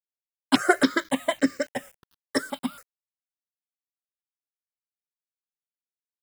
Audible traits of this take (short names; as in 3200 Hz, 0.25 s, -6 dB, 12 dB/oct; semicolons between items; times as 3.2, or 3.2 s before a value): a quantiser's noise floor 8-bit, dither none; notches that jump at a steady rate 3.6 Hz 750–3400 Hz